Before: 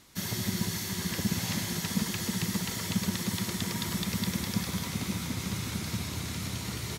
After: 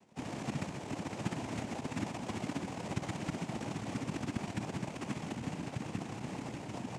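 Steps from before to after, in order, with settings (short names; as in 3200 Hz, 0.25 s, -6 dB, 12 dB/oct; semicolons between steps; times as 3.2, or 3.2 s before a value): LPF 3100 Hz 12 dB/oct; low shelf 150 Hz -8.5 dB; in parallel at -1 dB: limiter -29 dBFS, peak gain reduction 10 dB; on the sum: sample-and-hold 37×; noise vocoder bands 4; gain -6.5 dB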